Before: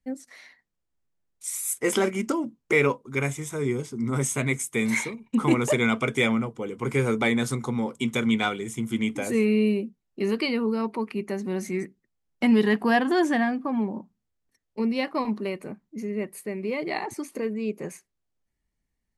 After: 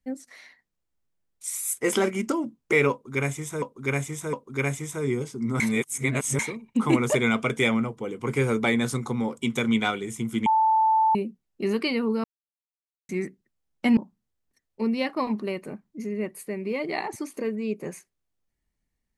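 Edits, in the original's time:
2.91–3.62 loop, 3 plays
4.18–4.97 reverse
9.04–9.73 bleep 881 Hz -17 dBFS
10.82–11.67 mute
12.55–13.95 cut

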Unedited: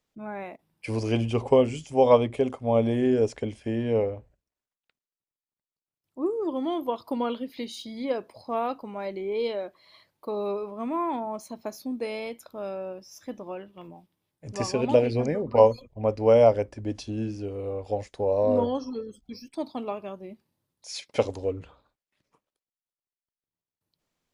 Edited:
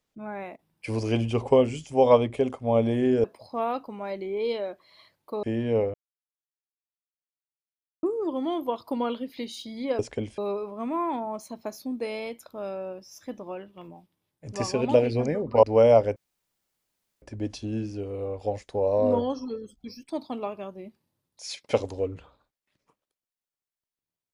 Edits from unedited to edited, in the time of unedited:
3.24–3.63 swap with 8.19–10.38
4.14–6.23 mute
15.63–16.14 cut
16.67 insert room tone 1.06 s

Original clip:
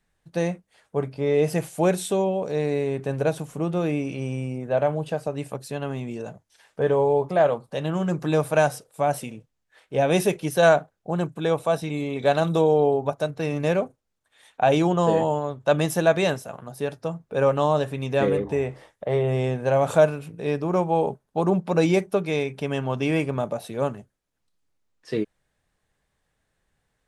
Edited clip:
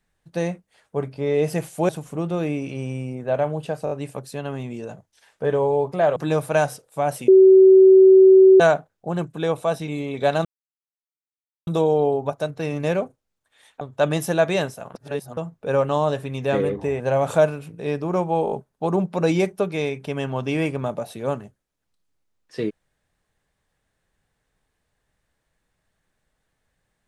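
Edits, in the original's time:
1.89–3.32 cut
5.28 stutter 0.02 s, 4 plays
7.53–8.18 cut
9.3–10.62 bleep 380 Hz -7 dBFS
12.47 insert silence 1.22 s
14.61–15.49 cut
16.63–17.05 reverse
18.68–19.6 cut
21.05 stutter 0.02 s, 4 plays

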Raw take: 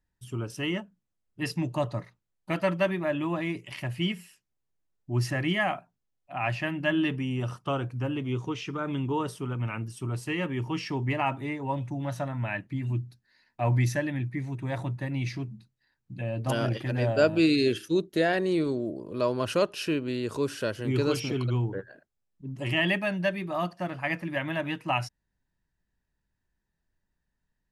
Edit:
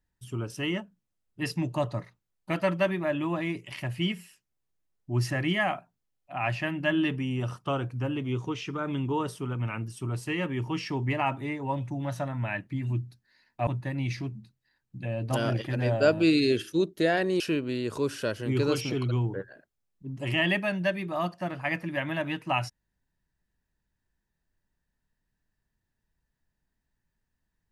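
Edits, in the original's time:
13.67–14.83 cut
18.56–19.79 cut

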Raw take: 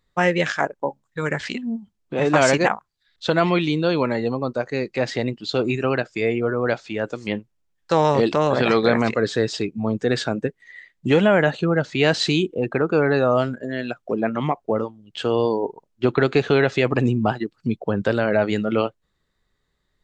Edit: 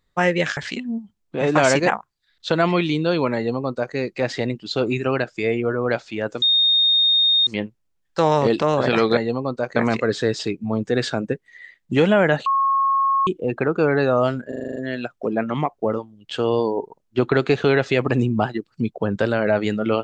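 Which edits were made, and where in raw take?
0.57–1.35 cut
4.14–4.73 copy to 8.9
7.2 add tone 3690 Hz -13.5 dBFS 1.05 s
11.6–12.41 bleep 1090 Hz -15.5 dBFS
13.62 stutter 0.04 s, 8 plays

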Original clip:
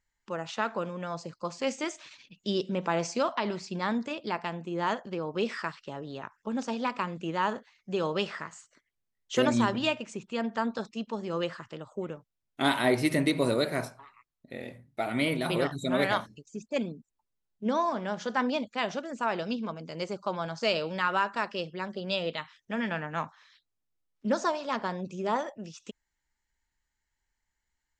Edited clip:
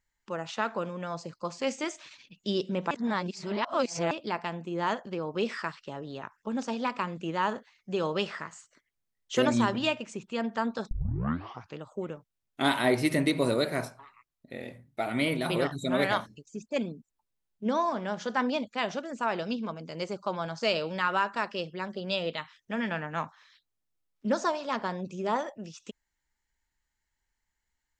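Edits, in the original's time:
2.91–4.11 reverse
10.91 tape start 0.89 s

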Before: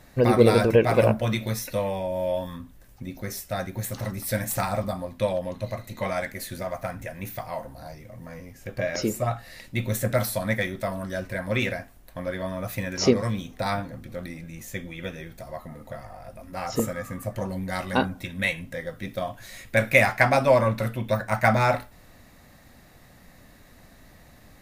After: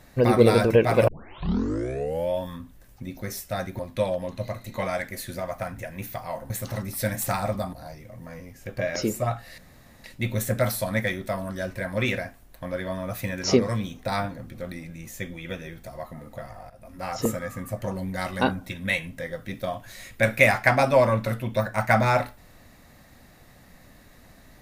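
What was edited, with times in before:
1.08 tape start 1.22 s
3.79–5.02 move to 7.73
9.58 insert room tone 0.46 s
16.24–16.59 fade in equal-power, from -14 dB

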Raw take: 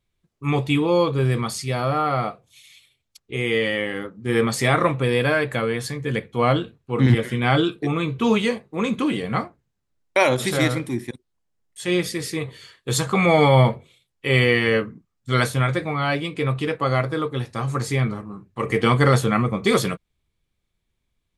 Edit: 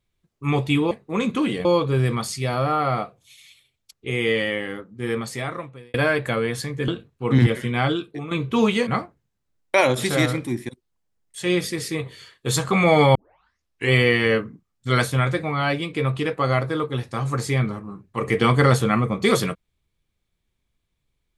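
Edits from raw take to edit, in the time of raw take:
3.61–5.2 fade out
6.14–6.56 cut
7.22–7.99 fade out, to -11.5 dB
8.55–9.29 move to 0.91
13.57 tape start 0.77 s

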